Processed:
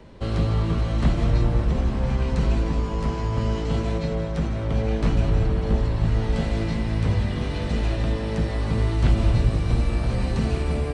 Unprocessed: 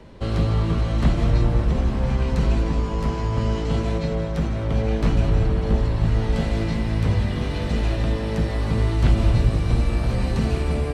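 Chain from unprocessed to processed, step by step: downsampling 22050 Hz; gain -1.5 dB

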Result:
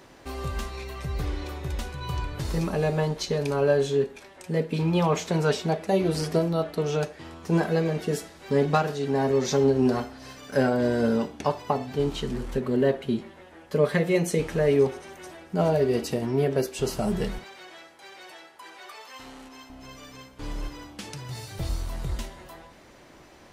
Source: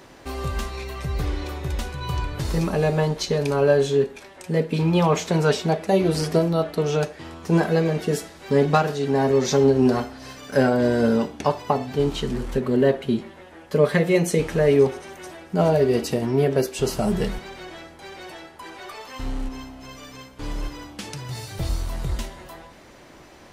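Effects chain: 17.44–19.7 HPF 710 Hz 6 dB/oct; gain -4 dB

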